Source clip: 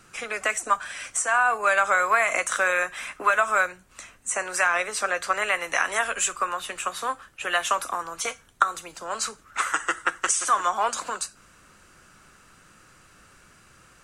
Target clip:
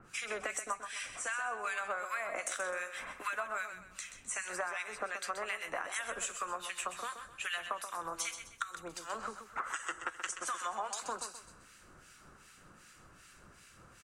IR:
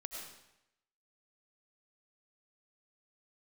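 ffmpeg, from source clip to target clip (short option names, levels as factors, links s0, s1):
-filter_complex "[0:a]acrossover=split=1500[s0][s1];[s0]aeval=exprs='val(0)*(1-1/2+1/2*cos(2*PI*2.6*n/s))':c=same[s2];[s1]aeval=exprs='val(0)*(1-1/2-1/2*cos(2*PI*2.6*n/s))':c=same[s3];[s2][s3]amix=inputs=2:normalize=0,acompressor=threshold=0.0178:ratio=6,aecho=1:1:129|258|387|516:0.355|0.121|0.041|0.0139"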